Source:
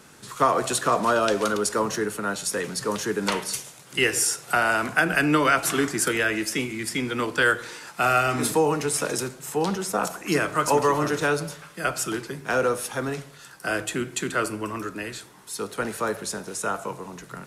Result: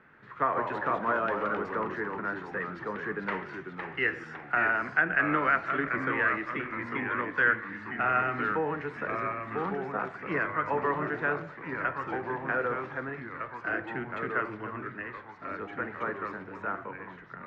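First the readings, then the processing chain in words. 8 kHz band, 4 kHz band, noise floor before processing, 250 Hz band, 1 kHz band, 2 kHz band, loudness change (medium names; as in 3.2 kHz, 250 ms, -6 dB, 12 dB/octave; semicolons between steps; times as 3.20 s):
under -40 dB, -20.0 dB, -48 dBFS, -8.0 dB, -5.0 dB, -2.5 dB, -6.0 dB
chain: ever faster or slower copies 106 ms, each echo -2 st, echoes 3, each echo -6 dB; four-pole ladder low-pass 2.1 kHz, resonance 55%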